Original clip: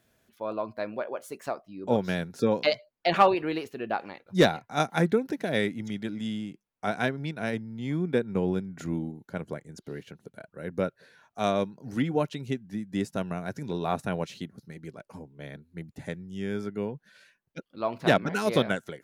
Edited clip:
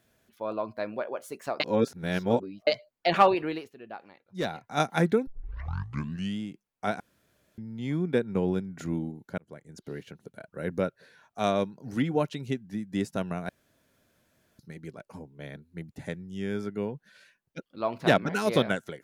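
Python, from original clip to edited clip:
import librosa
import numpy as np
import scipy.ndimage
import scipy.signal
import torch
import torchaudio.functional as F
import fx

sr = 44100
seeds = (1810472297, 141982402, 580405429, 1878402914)

y = fx.edit(x, sr, fx.reverse_span(start_s=1.6, length_s=1.07),
    fx.fade_down_up(start_s=3.42, length_s=1.3, db=-12.0, fade_s=0.3),
    fx.tape_start(start_s=5.27, length_s=1.11),
    fx.room_tone_fill(start_s=7.0, length_s=0.58),
    fx.fade_in_span(start_s=9.38, length_s=0.48),
    fx.clip_gain(start_s=10.53, length_s=0.25, db=4.0),
    fx.room_tone_fill(start_s=13.49, length_s=1.1), tone=tone)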